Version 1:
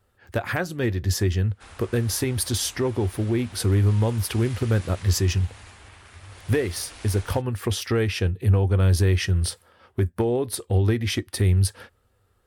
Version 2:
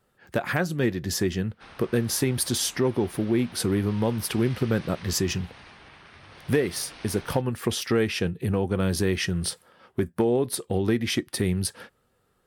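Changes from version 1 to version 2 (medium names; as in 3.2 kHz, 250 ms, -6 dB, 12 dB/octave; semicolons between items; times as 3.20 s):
background: add Savitzky-Golay filter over 15 samples; master: add resonant low shelf 120 Hz -6.5 dB, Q 3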